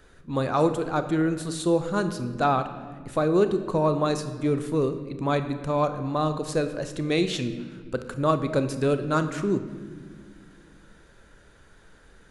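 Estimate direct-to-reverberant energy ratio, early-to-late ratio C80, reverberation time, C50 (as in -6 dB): 9.0 dB, 12.0 dB, 1.7 s, 10.5 dB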